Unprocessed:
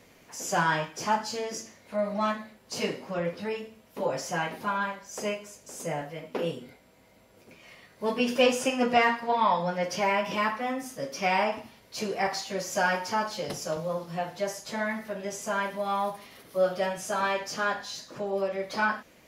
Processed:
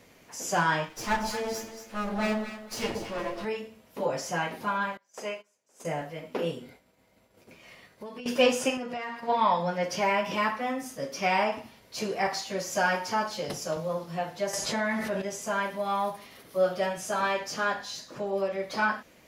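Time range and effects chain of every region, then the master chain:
0:00.89–0:03.45: lower of the sound and its delayed copy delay 8.9 ms + delay that swaps between a low-pass and a high-pass 116 ms, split 880 Hz, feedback 51%, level −3.5 dB
0:04.97–0:05.85: high-pass filter 610 Hz 6 dB per octave + high-shelf EQ 4,200 Hz −8 dB + noise gate −47 dBFS, range −19 dB
0:06.62–0:08.26: downward expander −55 dBFS + downward compressor 16 to 1, threshold −37 dBFS
0:08.77–0:09.28: downward expander −36 dBFS + downward compressor 5 to 1, threshold −33 dBFS
0:14.53–0:15.22: low-pass filter 11,000 Hz + envelope flattener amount 70%
whole clip: no processing

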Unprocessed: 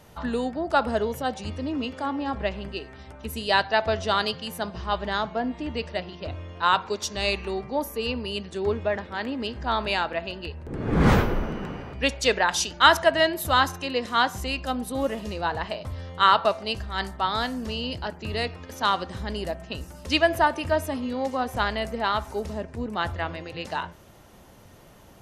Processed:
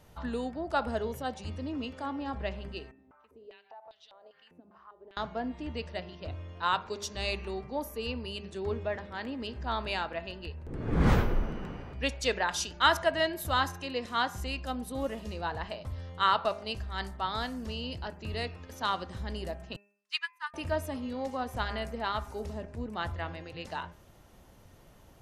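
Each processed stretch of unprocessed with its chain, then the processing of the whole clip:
0:02.91–0:05.17: parametric band 740 Hz +4 dB 1.7 octaves + downward compressor 12 to 1, threshold −32 dBFS + band-pass on a step sequencer 5 Hz 280–3,700 Hz
0:19.76–0:20.54: Butterworth high-pass 1,000 Hz 72 dB per octave + expander for the loud parts 2.5 to 1, over −43 dBFS
whole clip: low-shelf EQ 73 Hz +8.5 dB; hum removal 203 Hz, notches 13; level −7.5 dB

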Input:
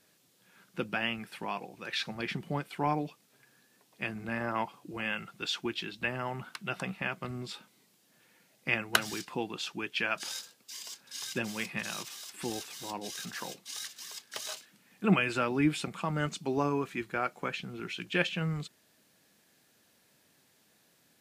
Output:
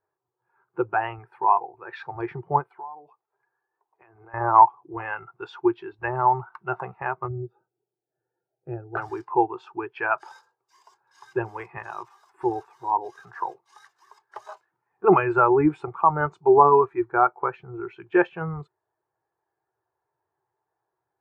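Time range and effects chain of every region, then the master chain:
0:02.71–0:04.34: low-shelf EQ 200 Hz −11.5 dB + downward compressor 10 to 1, threshold −44 dBFS
0:07.28–0:08.97: moving average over 42 samples + one half of a high-frequency compander encoder only
whole clip: drawn EQ curve 120 Hz 0 dB, 230 Hz −24 dB, 370 Hz +3 dB, 550 Hz −5 dB, 890 Hz +8 dB, 3,200 Hz −17 dB; boost into a limiter +16.5 dB; every bin expanded away from the loudest bin 1.5 to 1; level −1 dB

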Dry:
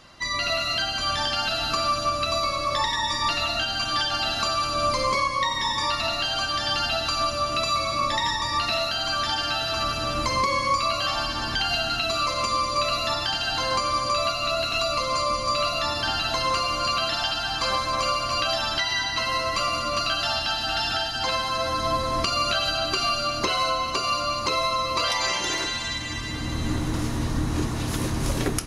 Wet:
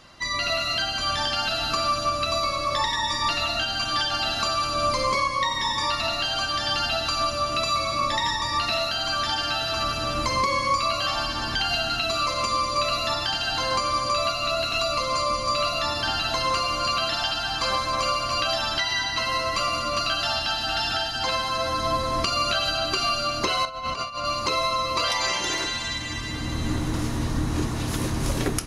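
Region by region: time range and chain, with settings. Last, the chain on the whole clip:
0:23.65–0:24.25: low-pass filter 3,300 Hz 6 dB per octave + parametric band 360 Hz −14.5 dB 0.35 octaves + compressor whose output falls as the input rises −30 dBFS, ratio −0.5
whole clip: no processing

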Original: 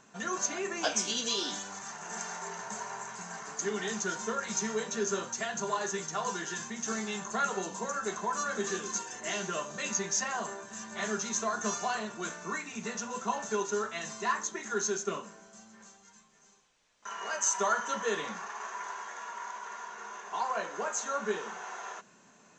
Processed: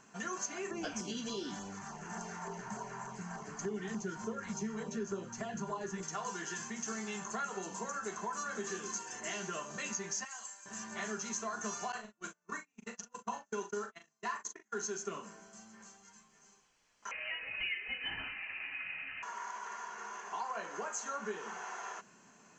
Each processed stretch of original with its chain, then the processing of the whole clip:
0:00.71–0:06.03: spectral tilt −3 dB per octave + auto-filter notch saw down 3.4 Hz 280–2,700 Hz
0:10.25–0:10.66: first difference + comb filter 3.8 ms, depth 74%
0:11.92–0:14.86: noise gate −35 dBFS, range −39 dB + double-tracking delay 39 ms −8 dB
0:17.11–0:19.23: linear-phase brick-wall high-pass 450 Hz + voice inversion scrambler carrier 3,500 Hz
whole clip: parametric band 560 Hz −4 dB 0.4 octaves; notch filter 3,700 Hz, Q 6.6; downward compressor 2.5 to 1, threshold −37 dBFS; level −1 dB

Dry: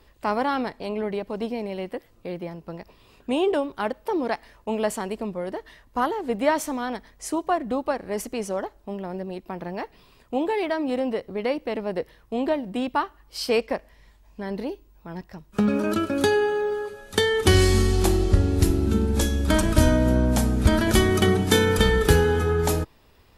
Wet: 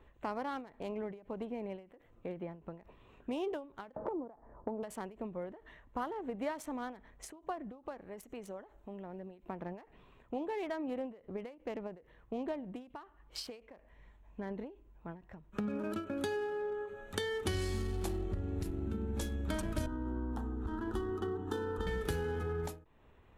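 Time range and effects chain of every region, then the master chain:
0:03.96–0:04.83: low-pass filter 1,100 Hz 24 dB per octave + multiband upward and downward compressor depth 100%
0:08.01–0:09.44: high-shelf EQ 4,000 Hz +9 dB + downward compressor 2 to 1, threshold −43 dBFS
0:19.86–0:21.87: bass and treble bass −2 dB, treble −14 dB + phaser with its sweep stopped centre 600 Hz, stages 6
whole clip: adaptive Wiener filter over 9 samples; downward compressor 2.5 to 1, threshold −34 dBFS; every ending faded ahead of time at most 140 dB per second; level −4.5 dB

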